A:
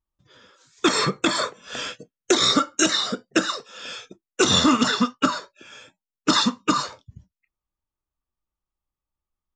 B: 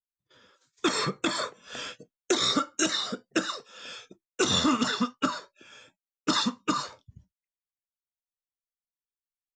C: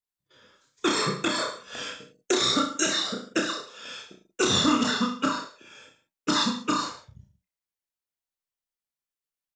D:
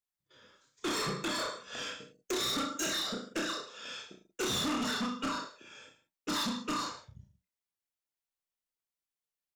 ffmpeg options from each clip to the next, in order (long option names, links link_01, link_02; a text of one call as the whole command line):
ffmpeg -i in.wav -af "agate=range=-21dB:threshold=-56dB:ratio=16:detection=peak,volume=-6.5dB" out.wav
ffmpeg -i in.wav -af "aecho=1:1:30|63|99.3|139.2|183.2:0.631|0.398|0.251|0.158|0.1" out.wav
ffmpeg -i in.wav -af "asoftclip=type=tanh:threshold=-26.5dB,volume=-3dB" out.wav